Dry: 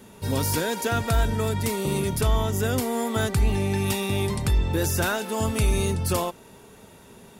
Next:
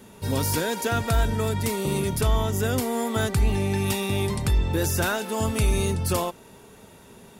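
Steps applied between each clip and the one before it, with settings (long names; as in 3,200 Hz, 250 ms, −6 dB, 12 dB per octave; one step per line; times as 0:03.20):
no processing that can be heard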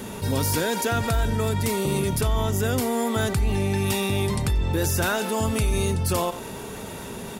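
single-tap delay 90 ms −22.5 dB
envelope flattener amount 50%
level −2.5 dB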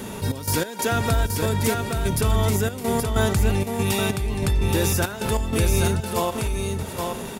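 gate pattern "xx.x.xxx.xx..xx" 95 BPM −12 dB
single-tap delay 824 ms −4.5 dB
level +1.5 dB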